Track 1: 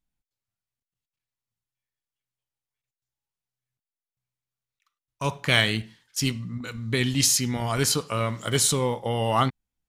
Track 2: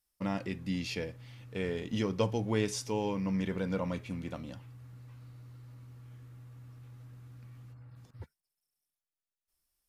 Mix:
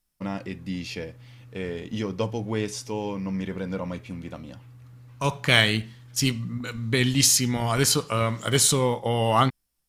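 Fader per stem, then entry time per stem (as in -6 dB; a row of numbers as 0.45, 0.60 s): +2.0, +2.5 dB; 0.00, 0.00 s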